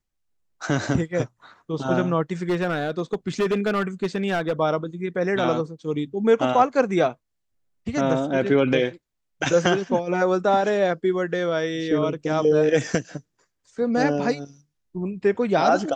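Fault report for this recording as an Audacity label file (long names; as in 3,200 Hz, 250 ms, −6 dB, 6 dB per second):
2.430000	4.600000	clipping −18 dBFS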